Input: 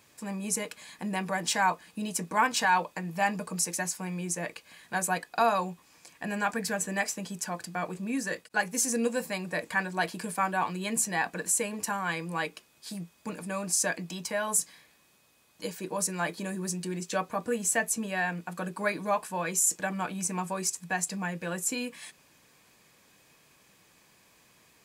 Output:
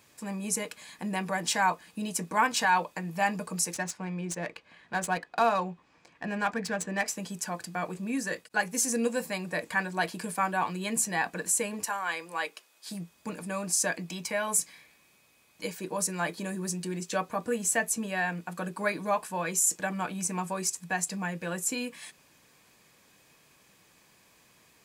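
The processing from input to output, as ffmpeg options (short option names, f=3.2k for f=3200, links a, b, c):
-filter_complex "[0:a]asettb=1/sr,asplit=3[a][b][c];[a]atrim=end=3.744[d];[b]atrim=start=3.74:end=7.08,asetpts=PTS-STARTPTS,afade=t=in:d=0.004:c=qsin,afade=t=out:st=3.336:d=0.004:c=qsin,adynamicsmooth=sensitivity=6.5:basefreq=2.9k[e];[c]atrim=start=7.076[f];[d][e]acrossfade=d=0.004:c1=hsin:c2=qsin[g];[g][f]acrossfade=d=0.004:c1=qsin:c2=hsin,asettb=1/sr,asplit=3[h][i][j];[h]atrim=end=11.854[k];[i]atrim=start=11.85:end=12.88,asetpts=PTS-STARTPTS,afade=t=in:d=0.004:c=qsin,afade=t=out:st=1.026:d=0.004:c=qsin,highpass=470[l];[j]atrim=start=12.876[m];[k][l]acrossfade=d=0.004:c1=hsin:c2=qsin[n];[n][m]acrossfade=d=0.004:c1=qsin:c2=hsin,asettb=1/sr,asplit=3[o][p][q];[o]atrim=end=14.084[r];[p]atrim=start=14.08:end=15.74,asetpts=PTS-STARTPTS,afade=t=in:d=0.004:c=qsin,afade=t=out:st=1.656:d=0.004:c=qsin,equalizer=f=2.3k:t=o:w=0.2:g=8.5[s];[q]atrim=start=15.736[t];[r][s]acrossfade=d=0.004:c1=hsin:c2=qsin[u];[u][t]acrossfade=d=0.004:c1=qsin:c2=hsin"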